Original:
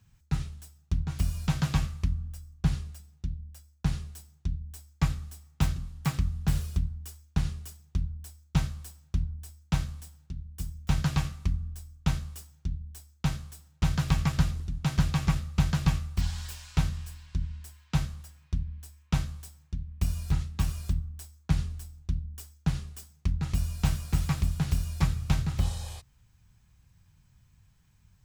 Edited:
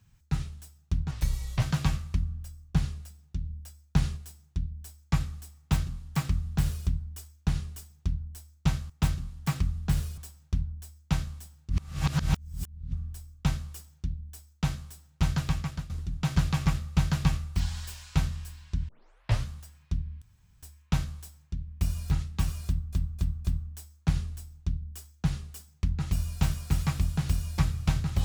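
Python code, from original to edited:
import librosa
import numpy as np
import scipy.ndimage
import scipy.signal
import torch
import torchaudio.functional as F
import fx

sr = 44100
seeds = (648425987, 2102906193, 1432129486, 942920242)

y = fx.edit(x, sr, fx.speed_span(start_s=1.11, length_s=0.4, speed=0.79),
    fx.clip_gain(start_s=3.34, length_s=0.72, db=3.5),
    fx.duplicate(start_s=5.48, length_s=1.28, to_s=8.79),
    fx.reverse_span(start_s=10.31, length_s=1.23),
    fx.fade_out_to(start_s=13.91, length_s=0.6, floor_db=-17.5),
    fx.tape_start(start_s=17.5, length_s=0.59),
    fx.insert_room_tone(at_s=18.83, length_s=0.41),
    fx.repeat(start_s=20.87, length_s=0.26, count=4), tone=tone)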